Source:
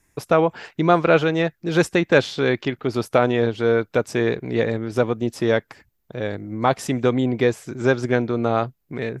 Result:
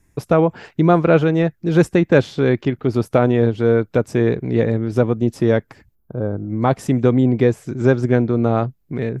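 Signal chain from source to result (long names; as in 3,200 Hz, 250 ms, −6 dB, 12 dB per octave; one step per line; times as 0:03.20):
dynamic equaliser 4,200 Hz, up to −4 dB, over −39 dBFS, Q 0.87
gain on a spectral selection 0:05.95–0:06.48, 1,600–10,000 Hz −20 dB
low-shelf EQ 390 Hz +11 dB
level −2 dB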